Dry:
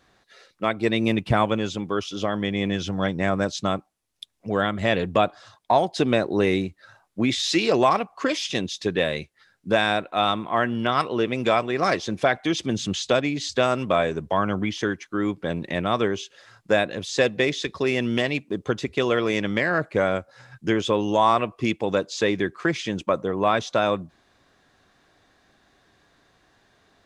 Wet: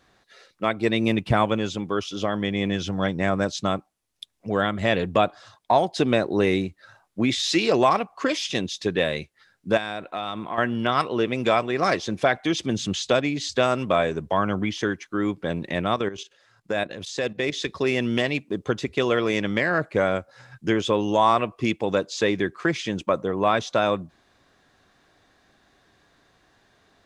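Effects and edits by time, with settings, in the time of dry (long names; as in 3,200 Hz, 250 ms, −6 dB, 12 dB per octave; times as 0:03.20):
0:09.77–0:10.58: downward compressor, threshold −25 dBFS
0:15.94–0:17.54: output level in coarse steps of 12 dB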